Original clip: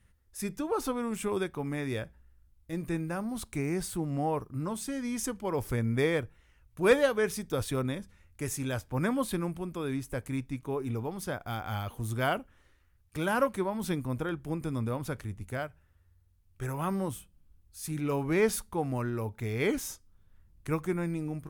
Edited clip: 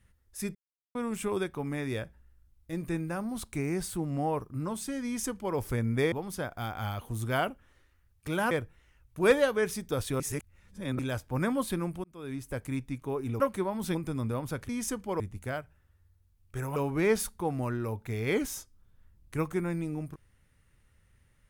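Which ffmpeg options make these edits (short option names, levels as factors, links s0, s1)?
-filter_complex "[0:a]asplit=13[s0][s1][s2][s3][s4][s5][s6][s7][s8][s9][s10][s11][s12];[s0]atrim=end=0.55,asetpts=PTS-STARTPTS,afade=t=out:st=0.546:d=0.004:c=hsin[s13];[s1]atrim=start=0.55:end=0.95,asetpts=PTS-STARTPTS,volume=0[s14];[s2]atrim=start=0.95:end=6.122,asetpts=PTS-STARTPTS,afade=t=in:d=0.004:c=hsin[s15];[s3]atrim=start=11.008:end=13.402[s16];[s4]atrim=start=6.118:end=7.812[s17];[s5]atrim=start=7.808:end=8.602,asetpts=PTS-STARTPTS,areverse[s18];[s6]atrim=start=8.598:end=9.65,asetpts=PTS-STARTPTS,afade=t=out:st=1.048:d=0.004:c=hsin[s19];[s7]atrim=start=9.65:end=11.012,asetpts=PTS-STARTPTS,afade=t=in:d=0.68:c=qsin[s20];[s8]atrim=start=13.398:end=13.952[s21];[s9]atrim=start=14.518:end=15.262[s22];[s10]atrim=start=5.048:end=5.562[s23];[s11]atrim=start=15.258:end=16.822[s24];[s12]atrim=start=18.088[s25];[s13][s14][s15]concat=n=3:v=0:a=1[s26];[s26][s16]acrossfade=d=0.004:c1=hsin:c2=hsin[s27];[s27][s17]acrossfade=d=0.004:c1=hsin:c2=hsin[s28];[s28][s18]acrossfade=d=0.004:c1=hsin:c2=hsin[s29];[s19][s20]concat=n=2:v=0:a=1[s30];[s29][s30]acrossfade=d=0.004:c1=hsin:c2=hsin[s31];[s31][s21]acrossfade=d=0.004:c1=hsin:c2=hsin[s32];[s32][s22]acrossfade=d=0.004:c1=hsin:c2=hsin[s33];[s33][s23]acrossfade=d=0.004:c1=hsin:c2=hsin[s34];[s34][s24]acrossfade=d=0.004:c1=hsin:c2=hsin[s35];[s35][s25]acrossfade=d=0.004:c1=hsin:c2=hsin"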